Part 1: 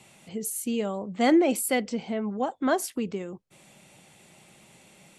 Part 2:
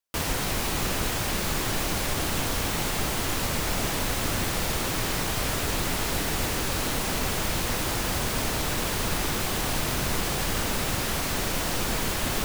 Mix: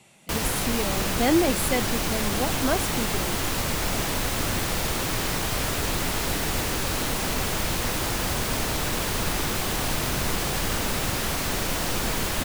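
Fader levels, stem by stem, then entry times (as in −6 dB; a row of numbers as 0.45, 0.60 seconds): −1.0, +1.0 decibels; 0.00, 0.15 seconds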